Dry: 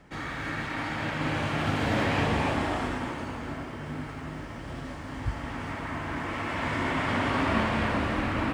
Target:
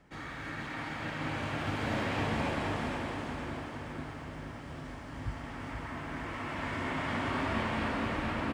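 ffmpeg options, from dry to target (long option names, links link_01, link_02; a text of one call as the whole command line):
ffmpeg -i in.wav -af "aecho=1:1:473|946|1419|1892|2365|2838|3311:0.531|0.281|0.149|0.079|0.0419|0.0222|0.0118,volume=-7dB" out.wav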